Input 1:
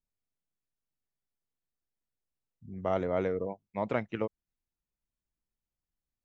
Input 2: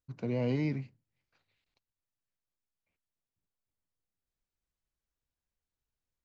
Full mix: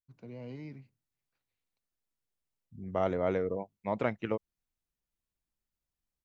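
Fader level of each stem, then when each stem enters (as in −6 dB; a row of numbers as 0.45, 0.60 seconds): 0.0, −13.0 decibels; 0.10, 0.00 seconds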